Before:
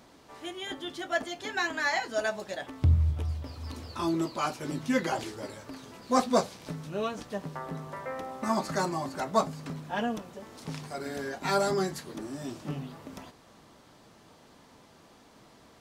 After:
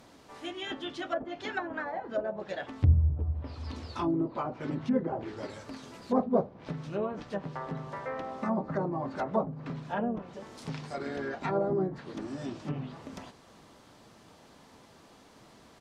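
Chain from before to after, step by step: harmony voices -3 st -10 dB; low-pass that closes with the level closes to 640 Hz, closed at -25.5 dBFS

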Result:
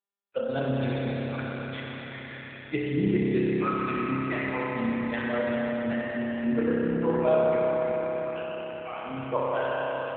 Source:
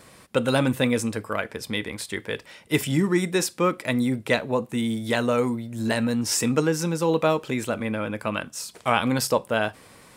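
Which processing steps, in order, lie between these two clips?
expander on every frequency bin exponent 2; 6.37–8.18 s: gate -45 dBFS, range -57 dB; spectral noise reduction 29 dB; bass shelf 190 Hz -8 dB; 8.75–9.18 s: compression 12:1, threshold -33 dBFS, peak gain reduction 14 dB; AM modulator 120 Hz, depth 45%; distance through air 58 m; reverberation RT60 5.7 s, pre-delay 30 ms, DRR -7.5 dB; AMR-NB 7.4 kbps 8 kHz

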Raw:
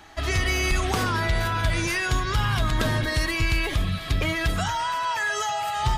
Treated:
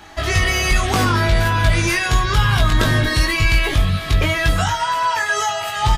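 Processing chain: doubling 20 ms -3.5 dB; trim +5.5 dB

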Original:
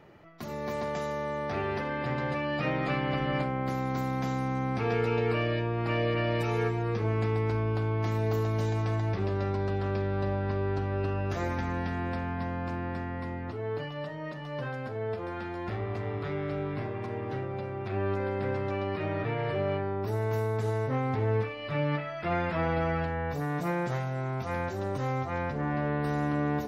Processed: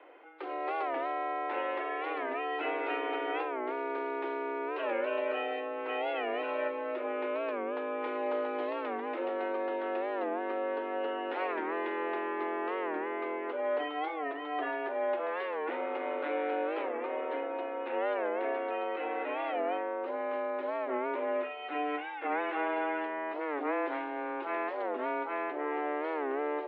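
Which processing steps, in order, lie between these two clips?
mistuned SSB +150 Hz 170–3100 Hz; gain riding 2 s; warped record 45 rpm, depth 160 cents; trim -1.5 dB

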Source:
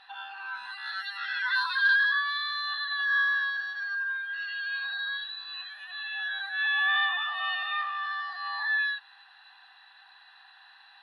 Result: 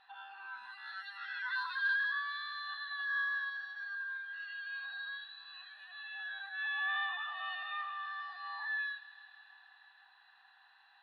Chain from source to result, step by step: treble shelf 2.7 kHz -9 dB; feedback echo behind a high-pass 159 ms, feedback 79%, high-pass 2.1 kHz, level -15 dB; trim -7 dB

